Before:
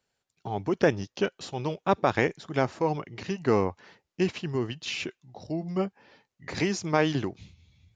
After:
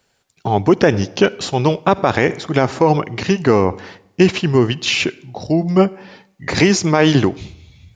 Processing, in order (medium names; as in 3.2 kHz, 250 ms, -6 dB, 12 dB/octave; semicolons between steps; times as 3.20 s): on a send at -22.5 dB: reverberation RT60 0.80 s, pre-delay 47 ms; on the sum: loudness maximiser +16.5 dB; trim -1 dB